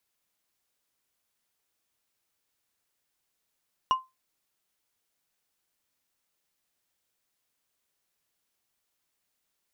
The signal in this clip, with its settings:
struck glass, lowest mode 1,040 Hz, decay 0.21 s, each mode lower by 11 dB, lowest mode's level −16 dB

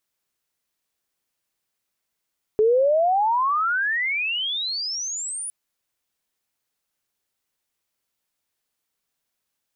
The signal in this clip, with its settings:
glide logarithmic 420 Hz → 10,000 Hz −14 dBFS → −28 dBFS 2.91 s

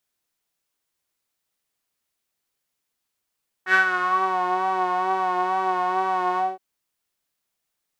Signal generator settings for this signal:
subtractive patch with vibrato F#4, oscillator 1 saw, sub −12 dB, filter bandpass, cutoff 610 Hz, Q 6.1, filter envelope 1.5 octaves, filter decay 0.69 s, filter sustain 40%, attack 84 ms, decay 0.11 s, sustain −8 dB, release 0.20 s, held 2.72 s, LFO 2.2 Hz, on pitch 36 cents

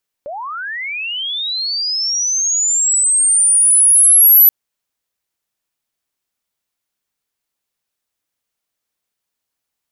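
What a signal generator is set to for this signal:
glide linear 540 Hz → 12,000 Hz −24 dBFS → −4 dBFS 4.23 s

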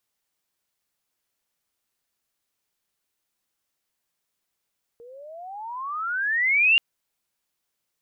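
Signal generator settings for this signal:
pitch glide with a swell sine, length 1.78 s, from 460 Hz, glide +31.5 semitones, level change +29 dB, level −13.5 dB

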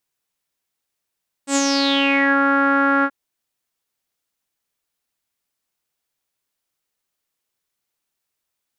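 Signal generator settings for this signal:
subtractive voice saw C#4 12 dB per octave, low-pass 1,500 Hz, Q 8.8, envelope 2.5 octaves, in 0.89 s, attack 85 ms, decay 0.05 s, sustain −2.5 dB, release 0.06 s, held 1.57 s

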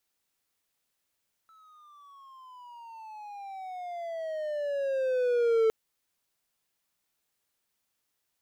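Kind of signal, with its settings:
pitch glide with a swell triangle, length 4.21 s, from 1,320 Hz, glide −19 semitones, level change +35 dB, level −18 dB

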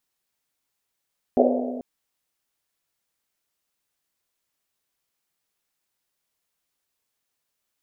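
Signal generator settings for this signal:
drum after Risset length 0.44 s, pitch 250 Hz, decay 2.22 s, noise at 550 Hz, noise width 300 Hz, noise 55%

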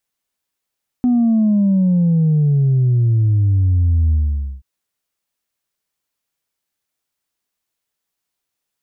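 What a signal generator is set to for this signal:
bass drop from 250 Hz, over 3.58 s, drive 0.5 dB, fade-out 0.50 s, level −11.5 dB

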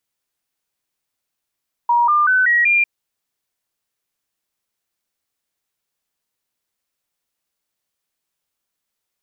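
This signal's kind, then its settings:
stepped sweep 952 Hz up, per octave 3, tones 5, 0.19 s, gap 0.00 s −11.5 dBFS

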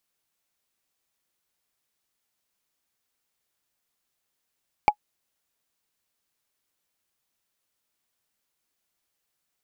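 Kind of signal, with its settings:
struck wood, lowest mode 838 Hz, decay 0.07 s, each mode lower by 9 dB, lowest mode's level −7 dB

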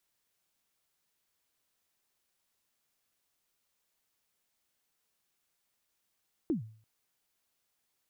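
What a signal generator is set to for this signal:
synth kick length 0.34 s, from 360 Hz, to 110 Hz, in 122 ms, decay 0.48 s, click off, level −24 dB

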